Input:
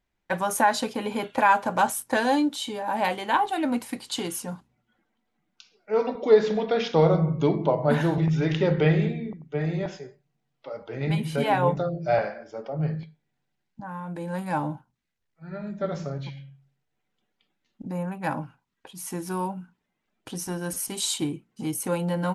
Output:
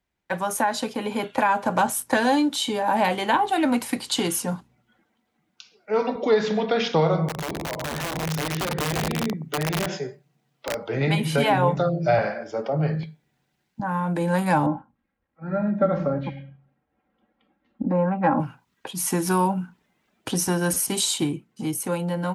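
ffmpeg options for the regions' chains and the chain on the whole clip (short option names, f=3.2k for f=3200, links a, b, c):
-filter_complex "[0:a]asettb=1/sr,asplit=3[a][b][c];[a]atrim=end=7.284[d];[b]atrim=start=7.28:end=10.84,asetpts=PTS-STARTPTS,afade=t=in:d=0.004:c=qsin,afade=t=out:st=3.556:d=0.004:c=qsin,acompressor=threshold=-31dB:ratio=8:attack=3.2:release=140:knee=1:detection=peak,highpass=f=98:w=0.5412,highpass=f=98:w=1.3066,aeval=exprs='(mod(28.2*val(0)+1,2)-1)/28.2':c=same[e];[c]atrim=start=10.836[f];[d][e]acrossfade=d=0.004:c1=hsin:c2=qsin[g];[g][f]acrossfade=d=0.004:c1=qsin:c2=hsin,asettb=1/sr,asplit=3[h][i][j];[h]atrim=end=14.664[k];[i]atrim=start=14.66:end=18.4,asetpts=PTS-STARTPTS,afade=t=in:d=0.004:c=qsin,afade=t=out:st=3.736:d=0.004:c=qsin,lowpass=1.4k,aecho=1:1:3.7:0.64,atrim=end_sample=164934[l];[j]atrim=start=18.396[m];[k][l]acrossfade=d=0.004:c1=hsin:c2=qsin[n];[n][m]acrossfade=d=0.004:c1=qsin:c2=hsin,dynaudnorm=f=280:g=11:m=11.5dB,highpass=43,acrossover=split=270|640[o][p][q];[o]acompressor=threshold=-24dB:ratio=4[r];[p]acompressor=threshold=-27dB:ratio=4[s];[q]acompressor=threshold=-21dB:ratio=4[t];[r][s][t]amix=inputs=3:normalize=0"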